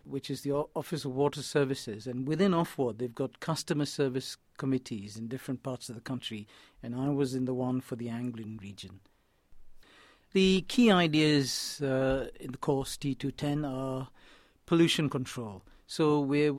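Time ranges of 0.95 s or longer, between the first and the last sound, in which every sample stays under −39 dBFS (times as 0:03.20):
0:08.90–0:10.35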